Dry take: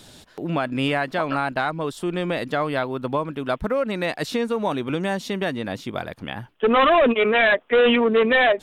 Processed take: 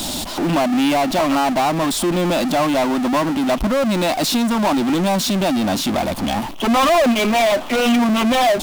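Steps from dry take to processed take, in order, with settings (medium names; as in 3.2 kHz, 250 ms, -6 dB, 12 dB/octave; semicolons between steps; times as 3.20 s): static phaser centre 450 Hz, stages 6; power-law waveshaper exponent 0.35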